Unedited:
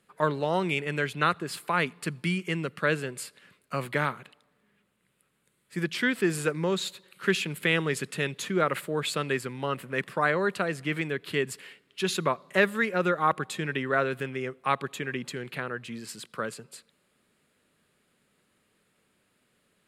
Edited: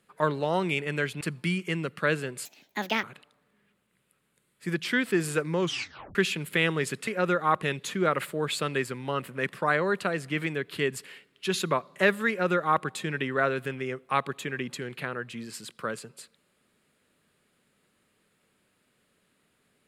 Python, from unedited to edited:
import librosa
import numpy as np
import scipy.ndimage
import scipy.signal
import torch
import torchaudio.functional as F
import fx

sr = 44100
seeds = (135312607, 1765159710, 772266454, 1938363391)

y = fx.edit(x, sr, fx.cut(start_s=1.21, length_s=0.8),
    fx.speed_span(start_s=3.25, length_s=0.88, speed=1.51),
    fx.tape_stop(start_s=6.7, length_s=0.55),
    fx.duplicate(start_s=12.84, length_s=0.55, to_s=8.17), tone=tone)